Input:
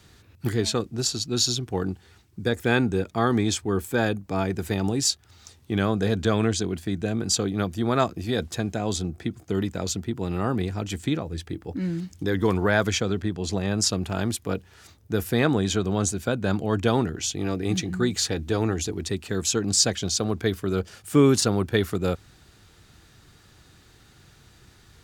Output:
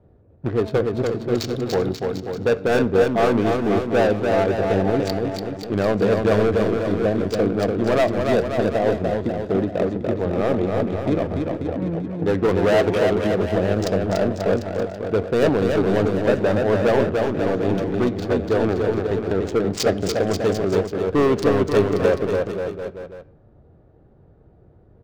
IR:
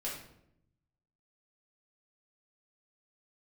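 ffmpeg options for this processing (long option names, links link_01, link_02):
-filter_complex "[0:a]equalizer=frequency=580:width=1.5:gain=13.5,adynamicsmooth=sensitivity=1.5:basefreq=510,asoftclip=type=hard:threshold=-15dB,aecho=1:1:290|536.5|746|924.1|1076:0.631|0.398|0.251|0.158|0.1,asplit=2[link_01][link_02];[1:a]atrim=start_sample=2205,lowpass=6700[link_03];[link_02][link_03]afir=irnorm=-1:irlink=0,volume=-16dB[link_04];[link_01][link_04]amix=inputs=2:normalize=0"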